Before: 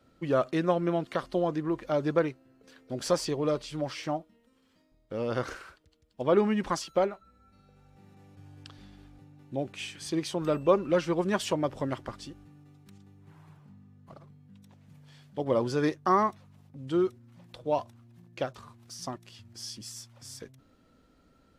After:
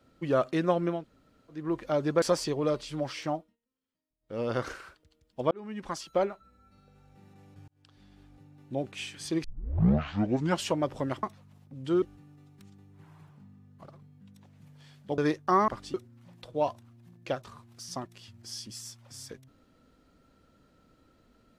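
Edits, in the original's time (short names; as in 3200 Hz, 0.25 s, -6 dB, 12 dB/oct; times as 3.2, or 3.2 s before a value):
0.97–1.6 room tone, crossfade 0.24 s
2.22–3.03 cut
4.18–5.21 dip -23.5 dB, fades 0.20 s
6.32–7.1 fade in
8.49–9.66 fade in equal-power
10.25 tape start 1.24 s
12.04–12.3 swap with 16.26–17.05
15.46–15.76 cut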